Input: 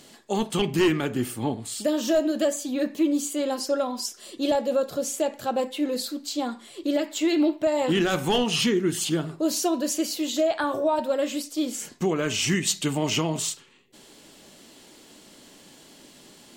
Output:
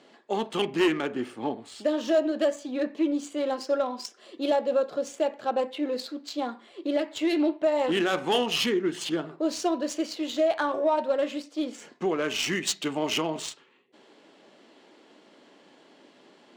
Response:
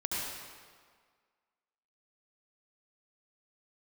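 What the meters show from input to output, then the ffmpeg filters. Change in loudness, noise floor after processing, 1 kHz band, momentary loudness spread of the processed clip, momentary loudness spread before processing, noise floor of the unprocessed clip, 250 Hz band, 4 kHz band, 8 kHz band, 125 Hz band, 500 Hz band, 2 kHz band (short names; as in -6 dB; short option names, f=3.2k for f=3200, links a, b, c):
-2.5 dB, -57 dBFS, -0.5 dB, 9 LU, 7 LU, -51 dBFS, -3.5 dB, -2.5 dB, -8.5 dB, -11.5 dB, -1.0 dB, -1.0 dB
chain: -af "highpass=310,adynamicsmooth=sensitivity=2.5:basefreq=2.6k"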